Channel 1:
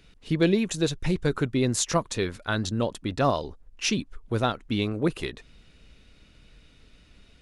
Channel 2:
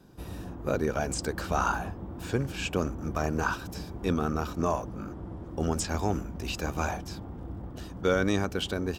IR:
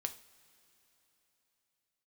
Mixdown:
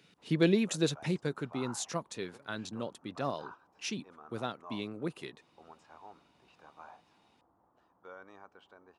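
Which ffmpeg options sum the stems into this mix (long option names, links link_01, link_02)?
-filter_complex "[0:a]highpass=frequency=130:width=0.5412,highpass=frequency=130:width=1.3066,volume=-4dB,afade=type=out:start_time=0.96:duration=0.43:silence=0.421697[link_01];[1:a]bandpass=frequency=980:width_type=q:width=2.2:csg=0,volume=-15dB[link_02];[link_01][link_02]amix=inputs=2:normalize=0"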